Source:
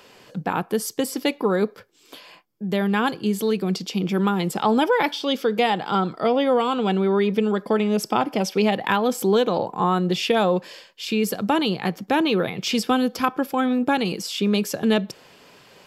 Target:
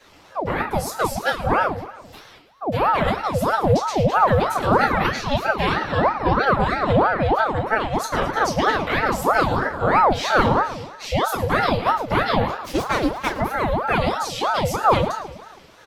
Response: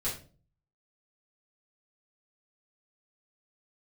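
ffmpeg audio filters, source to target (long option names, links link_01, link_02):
-filter_complex "[0:a]asettb=1/sr,asplit=3[link_01][link_02][link_03];[link_01]atrim=end=12.464[link_04];[link_02]atrim=start=12.46:end=13.28,asetpts=PTS-STARTPTS,afade=type=in:duration=0.004:curve=qsin,afade=type=out:start_time=0.816:duration=0.004:curve=qsin,aeval=exprs='0.473*(cos(1*acos(clip(val(0)/0.473,-1,1)))-cos(1*PI/2))+0.075*(cos(7*acos(clip(val(0)/0.473,-1,1)))-cos(7*PI/2))':channel_layout=same[link_05];[link_03]atrim=start=13.276[link_06];[link_04][link_05]acrossfade=duration=0.004:curve1=hsin:curve2=qsin[link_07];[link_07][link_06]acrossfade=duration=0.004:curve1=qsin:curve2=hsin,aecho=1:1:109|218|327|436|545|654:0.2|0.118|0.0695|0.041|0.0242|0.0143[link_08];[1:a]atrim=start_sample=2205,asetrate=57330,aresample=44100[link_09];[link_08][link_09]afir=irnorm=-1:irlink=0,aeval=exprs='val(0)*sin(2*PI*700*n/s+700*0.6/3.1*sin(2*PI*3.1*n/s))':channel_layout=same"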